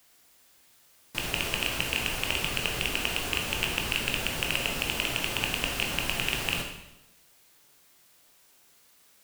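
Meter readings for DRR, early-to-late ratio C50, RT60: 1.5 dB, 5.0 dB, 0.90 s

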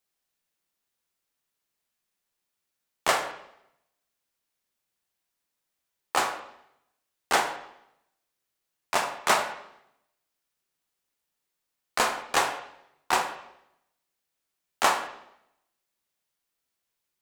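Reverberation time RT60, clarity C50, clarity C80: 0.80 s, 9.5 dB, 12.0 dB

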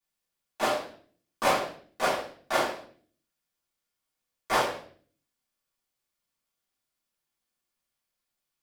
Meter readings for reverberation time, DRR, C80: 0.45 s, -11.5 dB, 9.5 dB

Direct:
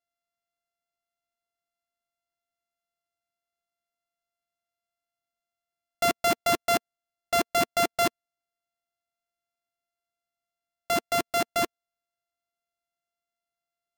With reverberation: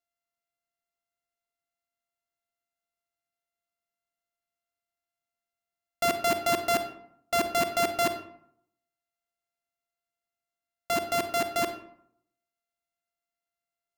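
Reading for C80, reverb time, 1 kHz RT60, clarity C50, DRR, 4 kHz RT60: 12.5 dB, 0.65 s, 0.65 s, 9.5 dB, 8.0 dB, 0.40 s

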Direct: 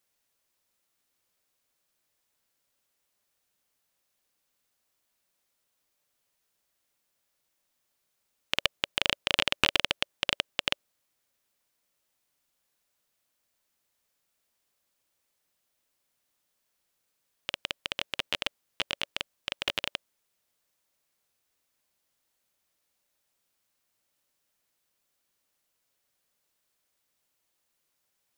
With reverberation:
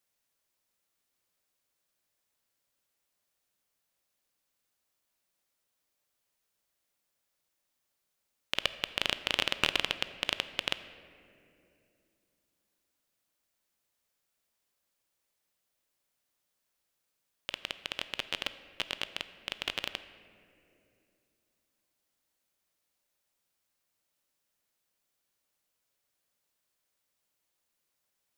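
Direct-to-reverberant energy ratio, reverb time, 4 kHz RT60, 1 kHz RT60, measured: 12.0 dB, 2.7 s, 1.5 s, 2.2 s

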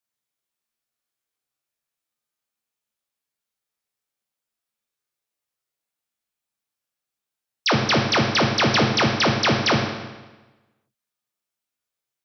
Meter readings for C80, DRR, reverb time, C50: 6.0 dB, 0.0 dB, 1.2 s, 4.0 dB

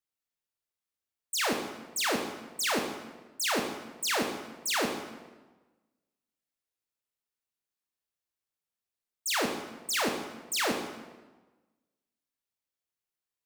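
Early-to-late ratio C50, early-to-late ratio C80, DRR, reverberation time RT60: 5.5 dB, 7.5 dB, 3.0 dB, 1.2 s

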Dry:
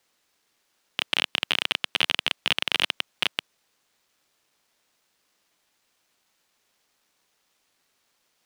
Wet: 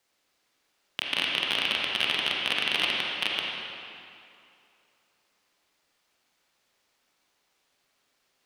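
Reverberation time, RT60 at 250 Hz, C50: 2.6 s, 2.5 s, -1.5 dB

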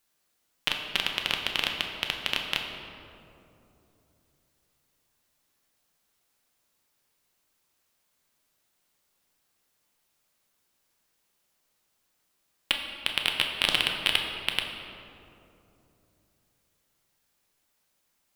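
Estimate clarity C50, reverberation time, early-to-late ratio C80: 4.0 dB, 3.0 s, 5.0 dB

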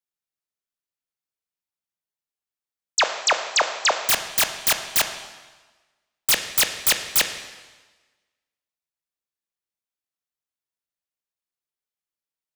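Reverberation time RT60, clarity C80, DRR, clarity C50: 1.3 s, 10.0 dB, 6.5 dB, 8.5 dB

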